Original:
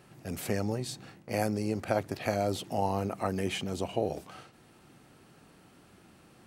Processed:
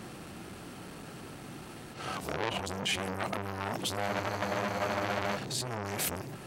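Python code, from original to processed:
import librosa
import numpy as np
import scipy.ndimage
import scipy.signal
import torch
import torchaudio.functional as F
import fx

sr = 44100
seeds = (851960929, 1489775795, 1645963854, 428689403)

p1 = np.flip(x).copy()
p2 = fx.over_compress(p1, sr, threshold_db=-42.0, ratio=-1.0)
p3 = p1 + (p2 * librosa.db_to_amplitude(-1.0))
p4 = fx.spec_freeze(p3, sr, seeds[0], at_s=4.12, hold_s=1.24)
p5 = fx.transformer_sat(p4, sr, knee_hz=2800.0)
y = p5 * librosa.db_to_amplitude(3.0)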